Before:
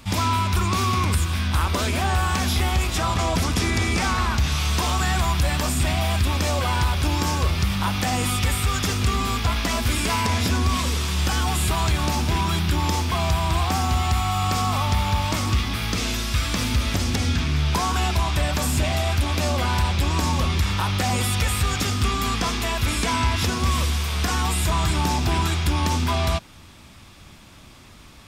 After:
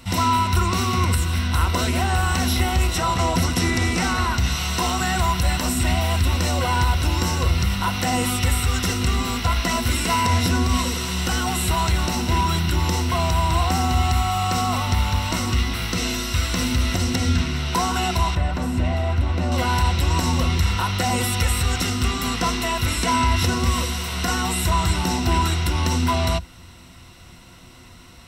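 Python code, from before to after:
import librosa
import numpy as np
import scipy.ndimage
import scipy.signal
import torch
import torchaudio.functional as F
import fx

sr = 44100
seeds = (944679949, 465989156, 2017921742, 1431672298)

y = fx.lowpass(x, sr, hz=1200.0, slope=6, at=(18.35, 19.52))
y = fx.ripple_eq(y, sr, per_octave=2.0, db=10)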